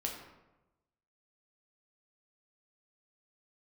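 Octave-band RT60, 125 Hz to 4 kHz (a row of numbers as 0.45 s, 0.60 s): 1.3 s, 1.1 s, 1.1 s, 1.0 s, 0.80 s, 0.60 s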